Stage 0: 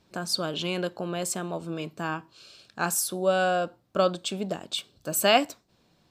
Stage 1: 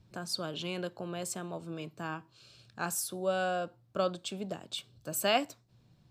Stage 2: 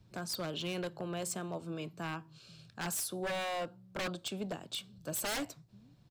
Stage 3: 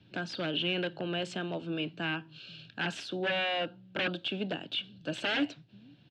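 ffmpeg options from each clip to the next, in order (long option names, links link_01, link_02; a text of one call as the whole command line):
ffmpeg -i in.wav -filter_complex "[0:a]equalizer=frequency=120:width_type=o:width=0.27:gain=12.5,acrossover=split=200|1700[link_01][link_02][link_03];[link_01]acompressor=mode=upward:threshold=-45dB:ratio=2.5[link_04];[link_04][link_02][link_03]amix=inputs=3:normalize=0,volume=-7.5dB" out.wav
ffmpeg -i in.wav -filter_complex "[0:a]acrossover=split=140[link_01][link_02];[link_01]aecho=1:1:490:0.631[link_03];[link_02]aeval=exprs='0.0299*(abs(mod(val(0)/0.0299+3,4)-2)-1)':channel_layout=same[link_04];[link_03][link_04]amix=inputs=2:normalize=0" out.wav
ffmpeg -i in.wav -filter_complex "[0:a]highpass=120,equalizer=frequency=290:width_type=q:width=4:gain=7,equalizer=frequency=1100:width_type=q:width=4:gain=-8,equalizer=frequency=1600:width_type=q:width=4:gain=8,equalizer=frequency=2800:width_type=q:width=4:gain=6,lowpass=frequency=3600:width=0.5412,lowpass=frequency=3600:width=1.3066,acrossover=split=2800[link_01][link_02];[link_02]acompressor=threshold=-52dB:ratio=4:attack=1:release=60[link_03];[link_01][link_03]amix=inputs=2:normalize=0,aexciter=amount=2.3:drive=7:freq=2700,volume=3.5dB" out.wav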